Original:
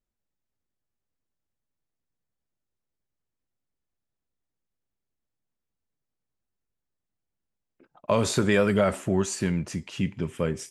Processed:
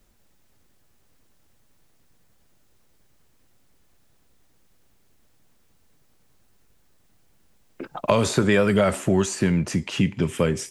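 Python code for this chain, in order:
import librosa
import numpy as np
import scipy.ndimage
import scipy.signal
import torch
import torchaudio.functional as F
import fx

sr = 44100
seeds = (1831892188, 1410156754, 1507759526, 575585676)

y = fx.band_squash(x, sr, depth_pct=70)
y = y * 10.0 ** (3.5 / 20.0)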